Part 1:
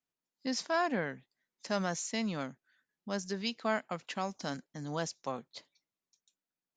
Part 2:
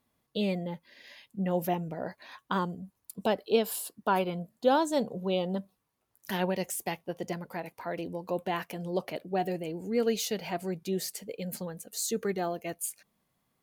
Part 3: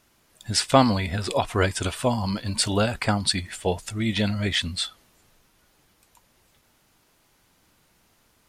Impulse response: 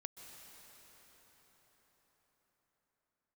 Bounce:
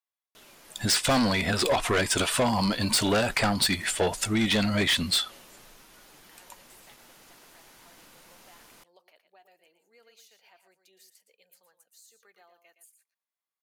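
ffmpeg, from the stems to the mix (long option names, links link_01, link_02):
-filter_complex "[1:a]highpass=1000,acompressor=threshold=-41dB:ratio=2.5,volume=-16dB,asplit=2[link_01][link_02];[link_02]volume=-9.5dB[link_03];[2:a]equalizer=frequency=68:width_type=o:width=2:gain=-14,acontrast=88,asoftclip=type=tanh:threshold=-17.5dB,adelay=350,volume=2.5dB[link_04];[link_03]aecho=0:1:116:1[link_05];[link_01][link_04][link_05]amix=inputs=3:normalize=0,acompressor=threshold=-23dB:ratio=2.5"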